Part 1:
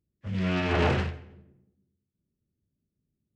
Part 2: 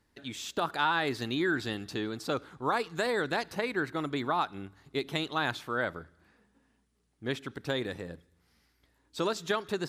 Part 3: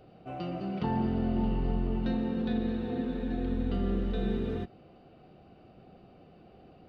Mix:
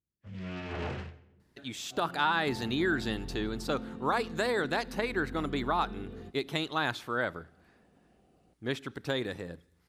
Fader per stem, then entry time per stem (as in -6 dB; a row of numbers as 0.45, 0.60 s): -12.0, 0.0, -11.5 dB; 0.00, 1.40, 1.65 s